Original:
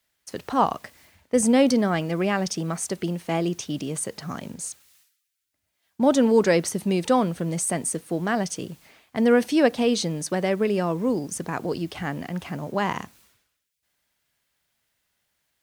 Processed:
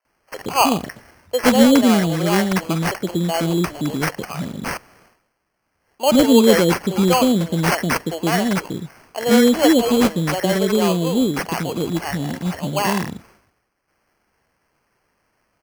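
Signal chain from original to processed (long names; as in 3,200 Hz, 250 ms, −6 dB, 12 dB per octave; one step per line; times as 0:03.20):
three-band delay without the direct sound mids, highs, lows 50/120 ms, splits 490/1,500 Hz
decimation without filtering 12×
level +7.5 dB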